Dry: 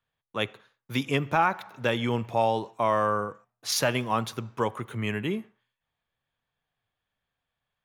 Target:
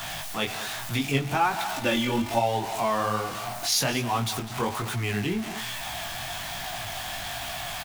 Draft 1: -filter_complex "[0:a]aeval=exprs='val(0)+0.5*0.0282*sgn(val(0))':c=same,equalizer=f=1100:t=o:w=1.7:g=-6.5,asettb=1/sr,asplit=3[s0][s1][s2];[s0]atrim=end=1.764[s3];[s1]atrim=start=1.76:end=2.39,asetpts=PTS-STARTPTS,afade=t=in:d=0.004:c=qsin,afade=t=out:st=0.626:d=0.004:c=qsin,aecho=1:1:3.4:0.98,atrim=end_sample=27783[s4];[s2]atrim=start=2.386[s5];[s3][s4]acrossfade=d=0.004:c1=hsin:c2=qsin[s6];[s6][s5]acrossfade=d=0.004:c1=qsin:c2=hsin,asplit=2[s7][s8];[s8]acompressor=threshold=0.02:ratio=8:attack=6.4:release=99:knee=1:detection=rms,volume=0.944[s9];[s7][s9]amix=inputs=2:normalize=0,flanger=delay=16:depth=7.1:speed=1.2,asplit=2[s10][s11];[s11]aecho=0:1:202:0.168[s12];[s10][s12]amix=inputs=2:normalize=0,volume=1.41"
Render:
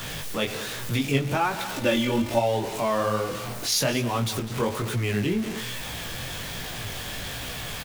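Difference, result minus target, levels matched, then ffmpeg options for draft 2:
500 Hz band +2.5 dB
-filter_complex "[0:a]aeval=exprs='val(0)+0.5*0.0282*sgn(val(0))':c=same,equalizer=f=1100:t=o:w=1.7:g=-6.5,asettb=1/sr,asplit=3[s0][s1][s2];[s0]atrim=end=1.764[s3];[s1]atrim=start=1.76:end=2.39,asetpts=PTS-STARTPTS,afade=t=in:d=0.004:c=qsin,afade=t=out:st=0.626:d=0.004:c=qsin,aecho=1:1:3.4:0.98,atrim=end_sample=27783[s4];[s2]atrim=start=2.386[s5];[s3][s4]acrossfade=d=0.004:c1=hsin:c2=qsin[s6];[s6][s5]acrossfade=d=0.004:c1=qsin:c2=hsin,asplit=2[s7][s8];[s8]acompressor=threshold=0.02:ratio=8:attack=6.4:release=99:knee=1:detection=rms,highpass=f=690:t=q:w=5.5,volume=0.944[s9];[s7][s9]amix=inputs=2:normalize=0,flanger=delay=16:depth=7.1:speed=1.2,asplit=2[s10][s11];[s11]aecho=0:1:202:0.168[s12];[s10][s12]amix=inputs=2:normalize=0,volume=1.41"

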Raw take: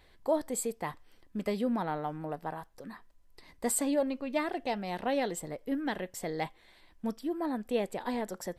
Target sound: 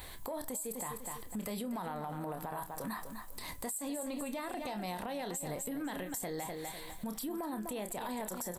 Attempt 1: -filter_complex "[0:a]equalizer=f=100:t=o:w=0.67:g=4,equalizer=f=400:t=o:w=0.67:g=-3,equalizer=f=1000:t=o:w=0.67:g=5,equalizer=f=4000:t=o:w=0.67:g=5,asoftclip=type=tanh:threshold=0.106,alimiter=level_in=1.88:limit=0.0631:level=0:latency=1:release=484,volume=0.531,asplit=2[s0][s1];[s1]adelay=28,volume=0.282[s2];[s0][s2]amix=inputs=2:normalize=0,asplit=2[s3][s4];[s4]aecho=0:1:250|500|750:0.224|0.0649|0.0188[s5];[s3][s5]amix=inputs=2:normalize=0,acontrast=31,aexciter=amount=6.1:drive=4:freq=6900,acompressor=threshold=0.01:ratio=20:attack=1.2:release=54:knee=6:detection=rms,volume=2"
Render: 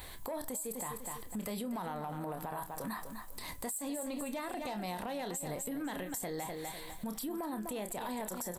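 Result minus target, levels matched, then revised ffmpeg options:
saturation: distortion +13 dB
-filter_complex "[0:a]equalizer=f=100:t=o:w=0.67:g=4,equalizer=f=400:t=o:w=0.67:g=-3,equalizer=f=1000:t=o:w=0.67:g=5,equalizer=f=4000:t=o:w=0.67:g=5,asoftclip=type=tanh:threshold=0.251,alimiter=level_in=1.88:limit=0.0631:level=0:latency=1:release=484,volume=0.531,asplit=2[s0][s1];[s1]adelay=28,volume=0.282[s2];[s0][s2]amix=inputs=2:normalize=0,asplit=2[s3][s4];[s4]aecho=0:1:250|500|750:0.224|0.0649|0.0188[s5];[s3][s5]amix=inputs=2:normalize=0,acontrast=31,aexciter=amount=6.1:drive=4:freq=6900,acompressor=threshold=0.01:ratio=20:attack=1.2:release=54:knee=6:detection=rms,volume=2"

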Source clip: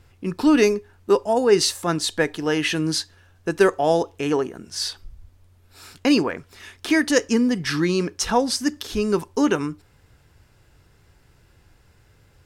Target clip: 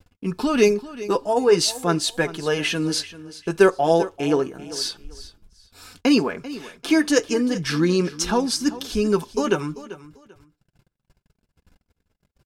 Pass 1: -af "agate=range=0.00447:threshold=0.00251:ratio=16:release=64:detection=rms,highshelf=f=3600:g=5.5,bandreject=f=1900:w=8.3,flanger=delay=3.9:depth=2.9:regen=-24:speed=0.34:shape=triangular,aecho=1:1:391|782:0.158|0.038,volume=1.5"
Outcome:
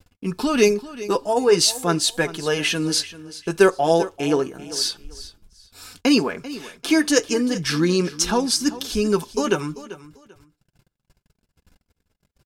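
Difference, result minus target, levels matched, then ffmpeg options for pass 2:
8 kHz band +3.5 dB
-af "agate=range=0.00447:threshold=0.00251:ratio=16:release=64:detection=rms,bandreject=f=1900:w=8.3,flanger=delay=3.9:depth=2.9:regen=-24:speed=0.34:shape=triangular,aecho=1:1:391|782:0.158|0.038,volume=1.5"

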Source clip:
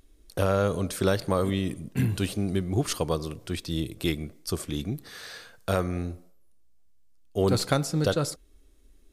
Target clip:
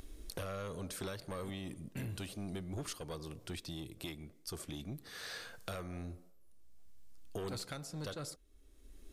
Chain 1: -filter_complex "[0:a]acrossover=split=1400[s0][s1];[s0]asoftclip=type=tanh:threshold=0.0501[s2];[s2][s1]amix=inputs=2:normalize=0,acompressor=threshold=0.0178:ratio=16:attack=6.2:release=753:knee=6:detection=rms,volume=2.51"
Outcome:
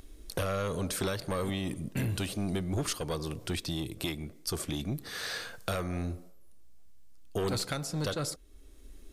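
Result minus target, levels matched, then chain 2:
compression: peak gain reduction -10 dB
-filter_complex "[0:a]acrossover=split=1400[s0][s1];[s0]asoftclip=type=tanh:threshold=0.0501[s2];[s2][s1]amix=inputs=2:normalize=0,acompressor=threshold=0.00531:ratio=16:attack=6.2:release=753:knee=6:detection=rms,volume=2.51"

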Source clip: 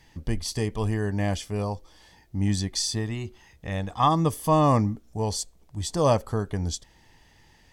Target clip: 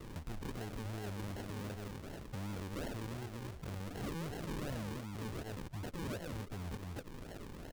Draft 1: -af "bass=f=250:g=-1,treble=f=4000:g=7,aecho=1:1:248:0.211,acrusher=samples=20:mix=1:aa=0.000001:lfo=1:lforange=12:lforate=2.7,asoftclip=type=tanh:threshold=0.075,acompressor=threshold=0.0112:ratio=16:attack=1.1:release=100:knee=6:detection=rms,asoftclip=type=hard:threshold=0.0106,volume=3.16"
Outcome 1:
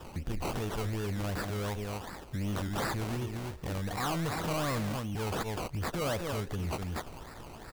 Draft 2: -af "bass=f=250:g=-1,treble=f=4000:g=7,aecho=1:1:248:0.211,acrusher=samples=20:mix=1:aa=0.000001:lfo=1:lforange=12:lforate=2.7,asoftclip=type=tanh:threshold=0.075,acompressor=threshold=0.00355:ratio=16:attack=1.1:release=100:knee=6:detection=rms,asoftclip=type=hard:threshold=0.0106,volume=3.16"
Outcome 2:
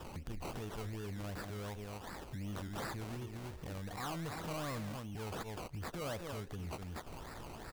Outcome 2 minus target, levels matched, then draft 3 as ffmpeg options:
decimation with a swept rate: distortion -7 dB
-af "bass=f=250:g=-1,treble=f=4000:g=7,aecho=1:1:248:0.211,acrusher=samples=52:mix=1:aa=0.000001:lfo=1:lforange=31.2:lforate=2.7,asoftclip=type=tanh:threshold=0.075,acompressor=threshold=0.00355:ratio=16:attack=1.1:release=100:knee=6:detection=rms,asoftclip=type=hard:threshold=0.0106,volume=3.16"

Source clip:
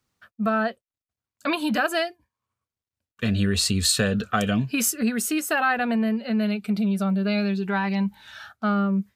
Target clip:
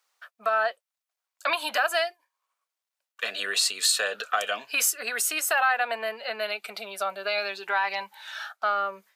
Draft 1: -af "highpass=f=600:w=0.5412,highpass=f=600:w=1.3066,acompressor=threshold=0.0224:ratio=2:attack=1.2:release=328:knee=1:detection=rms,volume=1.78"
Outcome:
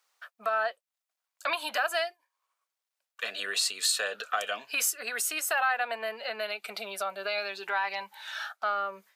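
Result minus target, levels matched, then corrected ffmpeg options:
compression: peak gain reduction +4 dB
-af "highpass=f=600:w=0.5412,highpass=f=600:w=1.3066,acompressor=threshold=0.0562:ratio=2:attack=1.2:release=328:knee=1:detection=rms,volume=1.78"

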